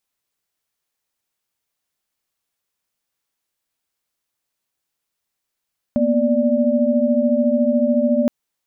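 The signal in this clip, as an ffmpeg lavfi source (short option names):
-f lavfi -i "aevalsrc='0.119*(sin(2*PI*233.08*t)+sin(2*PI*246.94*t)+sin(2*PI*587.33*t))':d=2.32:s=44100"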